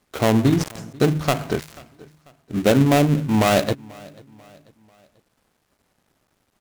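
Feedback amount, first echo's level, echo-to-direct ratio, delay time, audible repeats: 45%, −24.0 dB, −23.0 dB, 490 ms, 2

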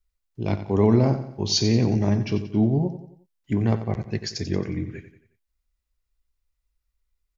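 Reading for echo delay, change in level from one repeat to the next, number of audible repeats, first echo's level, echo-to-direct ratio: 90 ms, −7.0 dB, 4, −11.5 dB, −10.5 dB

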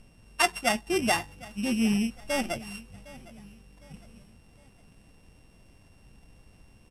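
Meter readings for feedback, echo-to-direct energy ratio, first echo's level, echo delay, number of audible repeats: 42%, −19.0 dB, −20.0 dB, 758 ms, 2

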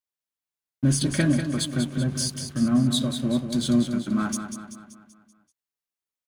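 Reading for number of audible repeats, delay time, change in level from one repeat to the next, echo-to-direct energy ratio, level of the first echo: 5, 192 ms, −6.0 dB, −6.5 dB, −8.0 dB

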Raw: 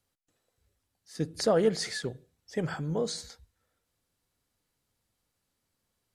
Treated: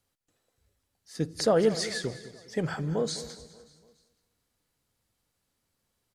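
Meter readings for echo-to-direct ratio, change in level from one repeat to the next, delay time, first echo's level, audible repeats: −13.5 dB, repeats not evenly spaced, 206 ms, −15.5 dB, 6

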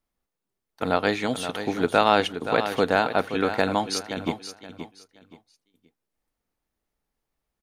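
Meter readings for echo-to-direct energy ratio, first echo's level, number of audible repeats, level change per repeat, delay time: −9.5 dB, −10.0 dB, 3, −12.0 dB, 524 ms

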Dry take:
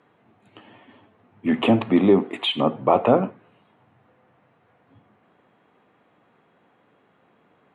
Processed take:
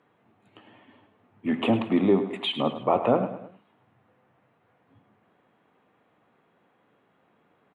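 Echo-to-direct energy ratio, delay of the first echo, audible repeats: −11.0 dB, 105 ms, 3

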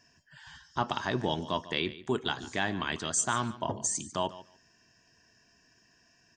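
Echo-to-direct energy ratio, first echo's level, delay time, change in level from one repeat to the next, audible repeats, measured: −16.5 dB, −16.5 dB, 146 ms, −16.5 dB, 2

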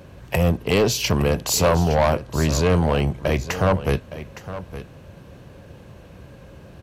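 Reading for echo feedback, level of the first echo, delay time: repeats not evenly spaced, −13.5 dB, 864 ms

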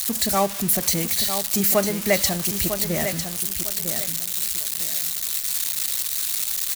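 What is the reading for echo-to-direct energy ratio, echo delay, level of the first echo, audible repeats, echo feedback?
−8.0 dB, 951 ms, −8.5 dB, 3, 27%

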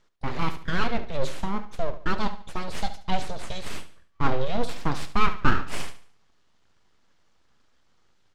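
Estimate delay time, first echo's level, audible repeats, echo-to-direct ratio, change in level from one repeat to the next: 72 ms, −13.5 dB, 3, −13.0 dB, −8.5 dB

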